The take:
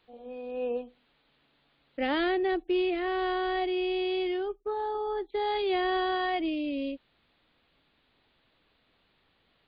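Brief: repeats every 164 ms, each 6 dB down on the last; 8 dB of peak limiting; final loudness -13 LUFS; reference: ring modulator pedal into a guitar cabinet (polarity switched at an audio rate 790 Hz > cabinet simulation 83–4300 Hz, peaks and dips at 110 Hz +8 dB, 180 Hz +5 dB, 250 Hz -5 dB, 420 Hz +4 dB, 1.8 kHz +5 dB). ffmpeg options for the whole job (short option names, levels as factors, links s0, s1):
-af "alimiter=level_in=1.06:limit=0.0631:level=0:latency=1,volume=0.944,aecho=1:1:164|328|492|656|820|984:0.501|0.251|0.125|0.0626|0.0313|0.0157,aeval=exprs='val(0)*sgn(sin(2*PI*790*n/s))':c=same,highpass=83,equalizer=f=110:t=q:w=4:g=8,equalizer=f=180:t=q:w=4:g=5,equalizer=f=250:t=q:w=4:g=-5,equalizer=f=420:t=q:w=4:g=4,equalizer=f=1800:t=q:w=4:g=5,lowpass=f=4300:w=0.5412,lowpass=f=4300:w=1.3066,volume=7.08"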